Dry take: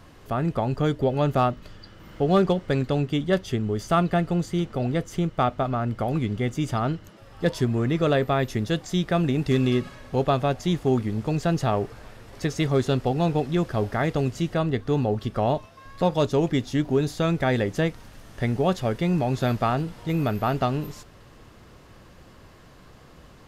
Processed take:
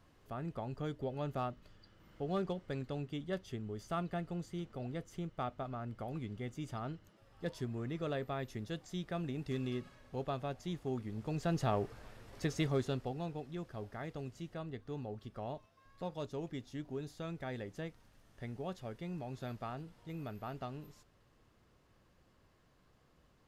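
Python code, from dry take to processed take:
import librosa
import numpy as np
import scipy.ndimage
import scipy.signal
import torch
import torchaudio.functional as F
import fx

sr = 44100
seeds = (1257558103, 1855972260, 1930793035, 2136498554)

y = fx.gain(x, sr, db=fx.line((11.0, -16.5), (11.63, -9.5), (12.6, -9.5), (13.35, -19.5)))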